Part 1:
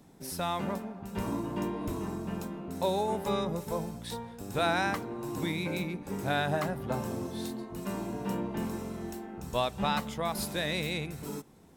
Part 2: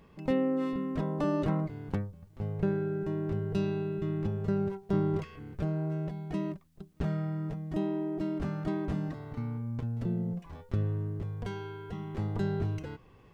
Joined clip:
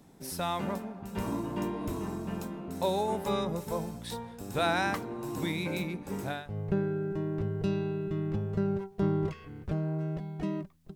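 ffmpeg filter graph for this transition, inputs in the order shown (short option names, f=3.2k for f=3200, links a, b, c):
-filter_complex "[0:a]apad=whole_dur=10.95,atrim=end=10.95,atrim=end=6.59,asetpts=PTS-STARTPTS[a];[1:a]atrim=start=2.12:end=6.86,asetpts=PTS-STARTPTS[b];[a][b]acrossfade=d=0.38:c1=qua:c2=qua"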